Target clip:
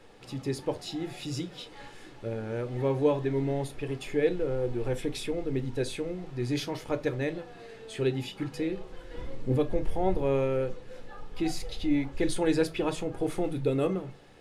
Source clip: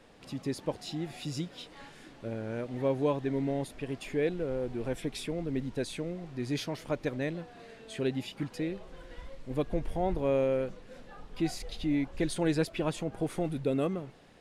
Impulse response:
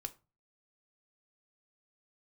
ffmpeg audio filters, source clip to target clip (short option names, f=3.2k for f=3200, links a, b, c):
-filter_complex "[0:a]asettb=1/sr,asplit=3[a][b][c];[a]atrim=end=9.144[d];[b]atrim=start=9.14:end=9.56,asetpts=PTS-STARTPTS,afade=t=in:d=0.004:c=qsin,afade=t=out:st=0.416:d=0.004:c=qsin,equalizer=f=230:t=o:w=2.4:g=12[e];[c]atrim=start=9.556[f];[d][e]acrossfade=d=0.004:c1=hsin:c2=qsin[g];[g][f]acrossfade=d=0.004:c1=qsin:c2=hsin[h];[1:a]atrim=start_sample=2205,asetrate=48510,aresample=44100[i];[h][i]afir=irnorm=-1:irlink=0,volume=6dB"